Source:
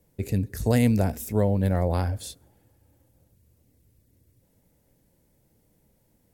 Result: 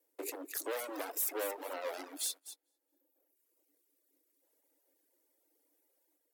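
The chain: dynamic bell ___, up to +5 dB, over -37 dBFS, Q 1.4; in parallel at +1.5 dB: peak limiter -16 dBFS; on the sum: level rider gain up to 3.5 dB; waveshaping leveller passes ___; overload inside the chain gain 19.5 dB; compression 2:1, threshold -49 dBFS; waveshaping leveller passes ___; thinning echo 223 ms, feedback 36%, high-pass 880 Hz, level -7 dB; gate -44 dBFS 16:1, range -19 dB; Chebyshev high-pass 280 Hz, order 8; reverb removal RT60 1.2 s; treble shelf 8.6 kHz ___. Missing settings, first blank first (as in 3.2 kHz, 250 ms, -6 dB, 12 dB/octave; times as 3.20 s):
530 Hz, 1, 1, +8 dB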